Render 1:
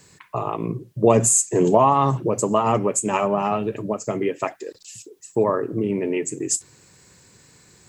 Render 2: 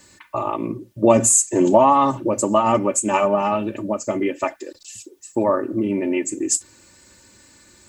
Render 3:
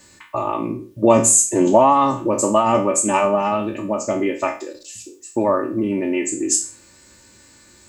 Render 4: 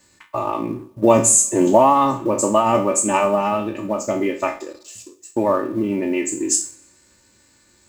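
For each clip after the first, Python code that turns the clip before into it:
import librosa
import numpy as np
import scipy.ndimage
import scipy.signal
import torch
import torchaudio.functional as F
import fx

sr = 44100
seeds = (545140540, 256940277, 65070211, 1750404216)

y1 = x + 0.81 * np.pad(x, (int(3.4 * sr / 1000.0), 0))[:len(x)]
y2 = fx.spec_trails(y1, sr, decay_s=0.38)
y3 = fx.law_mismatch(y2, sr, coded='A')
y3 = fx.rev_plate(y3, sr, seeds[0], rt60_s=0.95, hf_ratio=0.95, predelay_ms=0, drr_db=19.0)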